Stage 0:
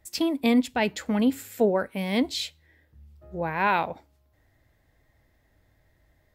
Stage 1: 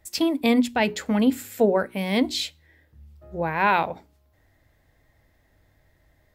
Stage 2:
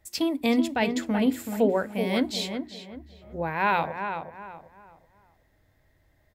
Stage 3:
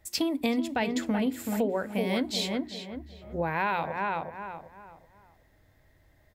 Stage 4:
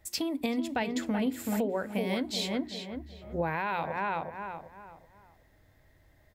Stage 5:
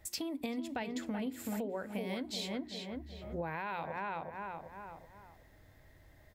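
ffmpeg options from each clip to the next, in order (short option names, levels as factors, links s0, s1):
-af "bandreject=f=60:t=h:w=6,bandreject=f=120:t=h:w=6,bandreject=f=180:t=h:w=6,bandreject=f=240:t=h:w=6,bandreject=f=300:t=h:w=6,bandreject=f=360:t=h:w=6,bandreject=f=420:t=h:w=6,volume=1.41"
-filter_complex "[0:a]asplit=2[s0][s1];[s1]adelay=378,lowpass=f=2300:p=1,volume=0.447,asplit=2[s2][s3];[s3]adelay=378,lowpass=f=2300:p=1,volume=0.33,asplit=2[s4][s5];[s5]adelay=378,lowpass=f=2300:p=1,volume=0.33,asplit=2[s6][s7];[s7]adelay=378,lowpass=f=2300:p=1,volume=0.33[s8];[s0][s2][s4][s6][s8]amix=inputs=5:normalize=0,volume=0.668"
-af "acompressor=threshold=0.0447:ratio=6,volume=1.33"
-af "alimiter=limit=0.0944:level=0:latency=1:release=335"
-af "acompressor=threshold=0.00562:ratio=2,volume=1.26"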